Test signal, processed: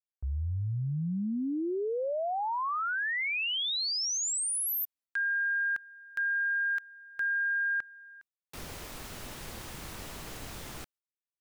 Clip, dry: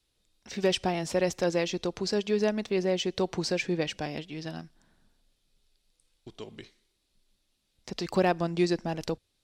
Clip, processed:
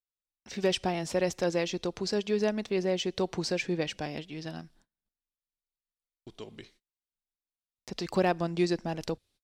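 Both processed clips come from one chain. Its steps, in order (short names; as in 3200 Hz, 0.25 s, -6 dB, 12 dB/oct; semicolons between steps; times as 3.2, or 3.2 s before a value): gate -59 dBFS, range -30 dB; gain -1.5 dB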